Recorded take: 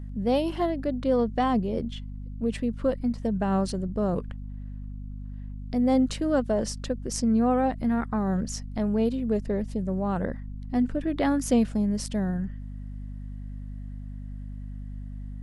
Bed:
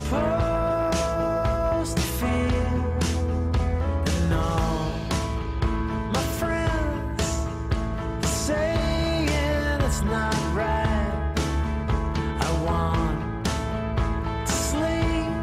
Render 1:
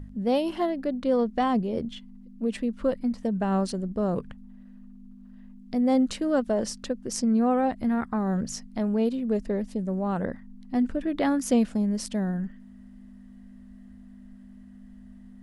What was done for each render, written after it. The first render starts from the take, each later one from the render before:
hum removal 50 Hz, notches 3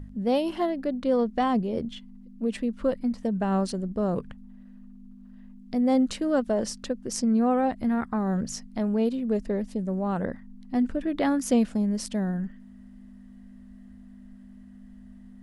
no processing that can be heard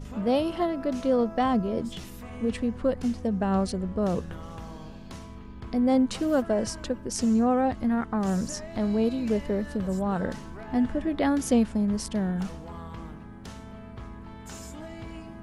mix in bed −17 dB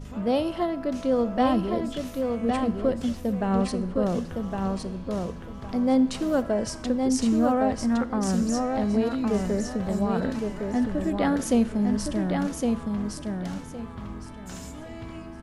repeating echo 1,112 ms, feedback 23%, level −4 dB
four-comb reverb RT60 0.67 s, combs from 27 ms, DRR 16.5 dB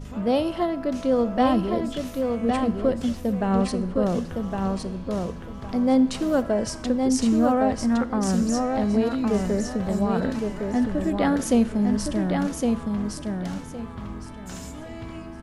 level +2 dB

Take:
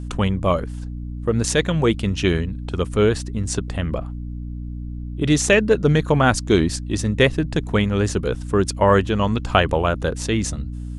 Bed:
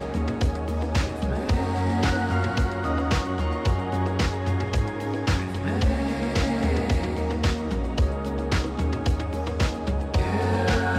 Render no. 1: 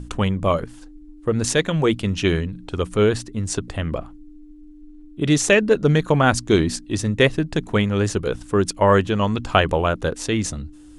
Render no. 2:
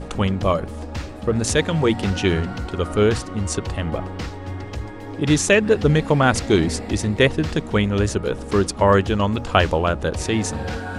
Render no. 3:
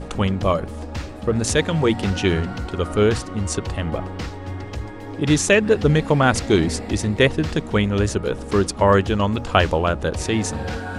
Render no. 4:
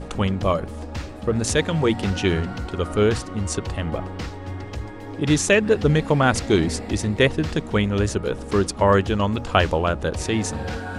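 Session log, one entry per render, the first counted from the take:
mains-hum notches 60/120/180/240 Hz
mix in bed −6 dB
no processing that can be heard
level −1.5 dB

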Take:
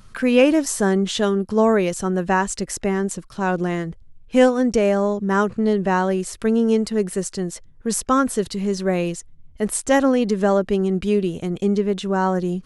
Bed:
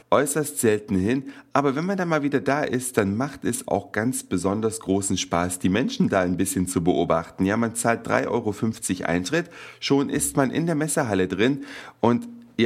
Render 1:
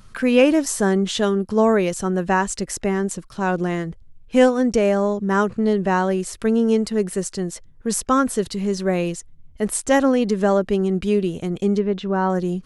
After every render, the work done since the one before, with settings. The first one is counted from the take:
0:11.79–0:12.30: high-frequency loss of the air 170 metres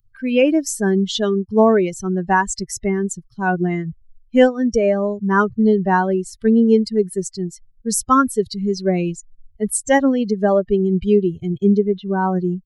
spectral dynamics exaggerated over time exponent 2
automatic gain control gain up to 8 dB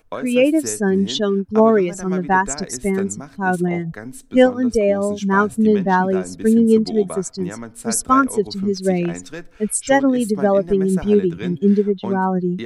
mix in bed −10 dB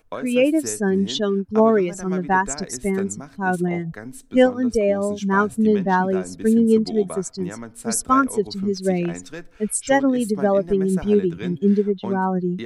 level −2.5 dB

